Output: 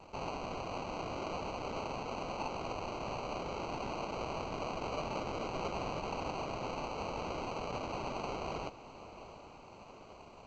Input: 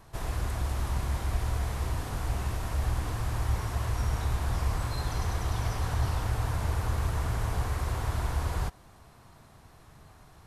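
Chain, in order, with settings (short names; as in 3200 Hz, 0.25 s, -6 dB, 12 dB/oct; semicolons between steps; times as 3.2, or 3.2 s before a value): in parallel at +1 dB: compressor 12:1, threshold -41 dBFS, peak gain reduction 19 dB; on the sum: crossover distortion -55 dBFS; ladder band-pass 2700 Hz, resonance 70%; sample-and-hold 25×; air absorption 97 m; on a send: diffused feedback echo 0.753 s, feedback 59%, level -15.5 dB; on the sum: gain +14.5 dB; A-law 128 kbps 16000 Hz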